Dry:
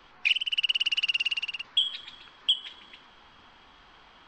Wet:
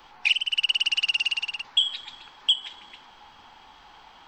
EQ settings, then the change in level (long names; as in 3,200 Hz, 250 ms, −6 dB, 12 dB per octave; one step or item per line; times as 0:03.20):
parametric band 840 Hz +12 dB 0.34 octaves
high-shelf EQ 5,500 Hz +12 dB
0.0 dB